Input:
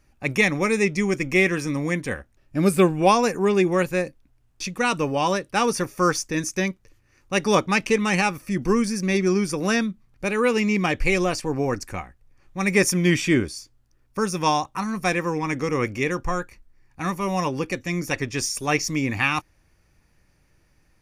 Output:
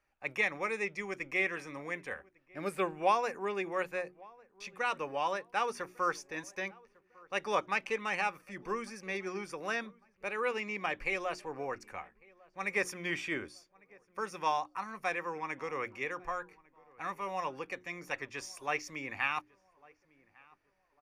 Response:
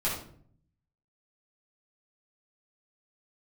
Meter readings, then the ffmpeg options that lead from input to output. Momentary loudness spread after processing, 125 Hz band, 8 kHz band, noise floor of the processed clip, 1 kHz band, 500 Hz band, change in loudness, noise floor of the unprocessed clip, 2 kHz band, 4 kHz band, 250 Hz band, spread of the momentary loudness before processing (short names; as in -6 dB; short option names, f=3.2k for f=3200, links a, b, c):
11 LU, -24.5 dB, -19.5 dB, -73 dBFS, -9.0 dB, -14.0 dB, -13.0 dB, -62 dBFS, -9.5 dB, -14.5 dB, -21.5 dB, 10 LU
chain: -filter_complex "[0:a]acrossover=split=470 3100:gain=0.158 1 0.251[a][b][c];[a][b][c]amix=inputs=3:normalize=0,bandreject=f=60:t=h:w=6,bandreject=f=120:t=h:w=6,bandreject=f=180:t=h:w=6,bandreject=f=240:t=h:w=6,bandreject=f=300:t=h:w=6,bandreject=f=360:t=h:w=6,asplit=2[d][e];[e]adelay=1151,lowpass=f=1.5k:p=1,volume=-24dB,asplit=2[f][g];[g]adelay=1151,lowpass=f=1.5k:p=1,volume=0.41,asplit=2[h][i];[i]adelay=1151,lowpass=f=1.5k:p=1,volume=0.41[j];[d][f][h][j]amix=inputs=4:normalize=0,volume=-8.5dB"